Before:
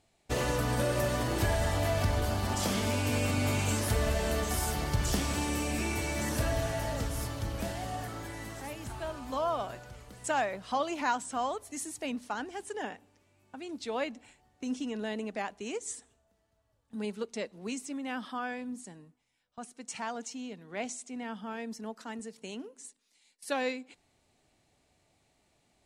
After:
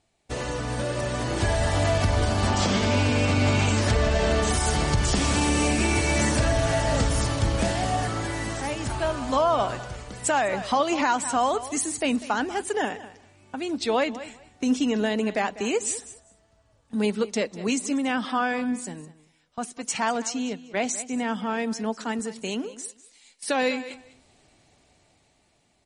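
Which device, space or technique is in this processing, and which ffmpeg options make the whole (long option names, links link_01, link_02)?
low-bitrate web radio: -filter_complex "[0:a]asettb=1/sr,asplit=3[link_01][link_02][link_03];[link_01]atrim=end=2.494[link_04];[link_02]atrim=start=2.49:end=4.42,asetpts=PTS-STARTPTS,afade=type=in:duration=0.004:curve=qsin,afade=type=out:start_time=1.926:duration=0.004:curve=qsin,lowpass=5800[link_05];[link_03]atrim=start=4.416[link_06];[link_04][link_05]acrossfade=duration=0.004:curve1=hsin:curve2=qsin[link_07];[link_07][link_06]acrossfade=duration=0.004:curve1=qsin:curve2=hsin,asplit=3[link_08][link_09][link_10];[link_08]afade=type=out:start_time=20.47:duration=0.02[link_11];[link_09]agate=range=-19dB:threshold=-43dB:ratio=16:detection=peak,afade=type=in:start_time=20.47:duration=0.02,afade=type=out:start_time=21.08:duration=0.02[link_12];[link_10]afade=type=in:start_time=21.08:duration=0.02[link_13];[link_11][link_12][link_13]amix=inputs=3:normalize=0,aecho=1:1:197|394:0.141|0.024,dynaudnorm=framelen=530:gausssize=7:maxgain=12dB,alimiter=limit=-12.5dB:level=0:latency=1:release=130" -ar 44100 -c:a libmp3lame -b:a 40k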